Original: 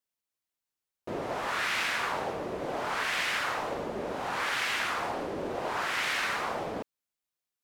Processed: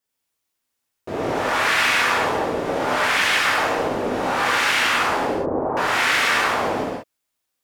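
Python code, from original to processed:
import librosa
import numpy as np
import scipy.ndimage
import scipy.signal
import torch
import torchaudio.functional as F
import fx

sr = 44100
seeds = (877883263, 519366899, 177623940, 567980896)

y = fx.lowpass(x, sr, hz=1100.0, slope=24, at=(5.25, 5.77))
y = fx.rev_gated(y, sr, seeds[0], gate_ms=220, shape='flat', drr_db=-5.5)
y = y * 10.0 ** (5.0 / 20.0)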